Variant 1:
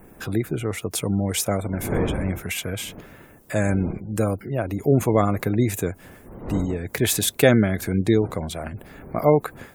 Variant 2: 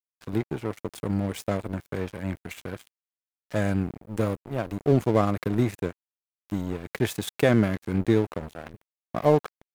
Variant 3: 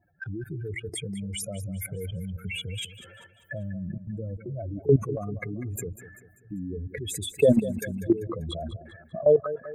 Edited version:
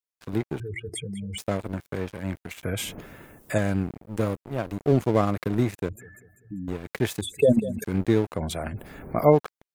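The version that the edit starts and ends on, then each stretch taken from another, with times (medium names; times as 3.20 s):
2
0.60–1.38 s: from 3
2.63–3.58 s: from 1
5.89–6.68 s: from 3
7.21–7.84 s: from 3
8.37–9.35 s: from 1, crossfade 0.10 s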